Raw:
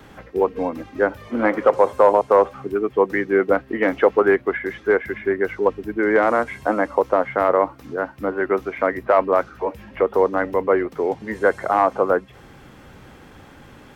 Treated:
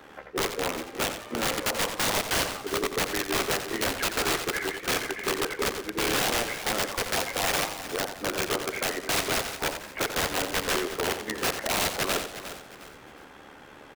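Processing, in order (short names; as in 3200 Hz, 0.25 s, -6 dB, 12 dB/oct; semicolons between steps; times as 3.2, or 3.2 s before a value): dynamic EQ 720 Hz, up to +5 dB, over -29 dBFS, Q 1.7; AM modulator 74 Hz, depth 55%; in parallel at +1.5 dB: compressor 8:1, threshold -27 dBFS, peak gain reduction 18.5 dB; on the sum: tone controls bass -13 dB, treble -2 dB; wrapped overs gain 15.5 dB; on a send: feedback echo 0.358 s, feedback 33%, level -12 dB; on the sum: warbling echo 87 ms, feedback 37%, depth 113 cents, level -9 dB; gain -5 dB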